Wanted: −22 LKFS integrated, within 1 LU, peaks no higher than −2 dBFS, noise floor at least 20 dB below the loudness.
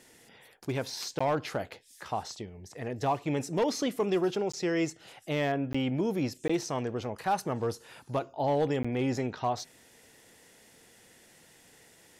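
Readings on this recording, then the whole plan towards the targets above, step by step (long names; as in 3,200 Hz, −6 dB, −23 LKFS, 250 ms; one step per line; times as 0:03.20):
share of clipped samples 0.3%; peaks flattened at −20.5 dBFS; number of dropouts 5; longest dropout 15 ms; integrated loudness −31.5 LKFS; sample peak −20.5 dBFS; target loudness −22.0 LKFS
→ clipped peaks rebuilt −20.5 dBFS
repair the gap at 0:01.19/0:04.52/0:05.73/0:06.48/0:08.83, 15 ms
level +9.5 dB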